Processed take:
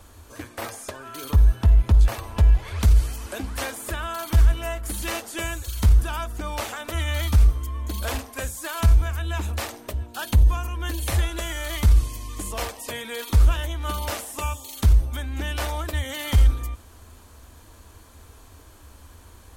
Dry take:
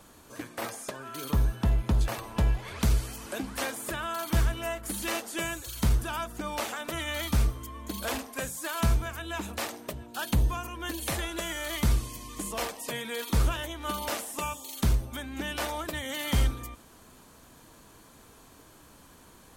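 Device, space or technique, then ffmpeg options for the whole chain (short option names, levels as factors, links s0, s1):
car stereo with a boomy subwoofer: -af "lowshelf=f=110:t=q:w=3:g=8.5,alimiter=limit=0.266:level=0:latency=1:release=26,volume=1.33"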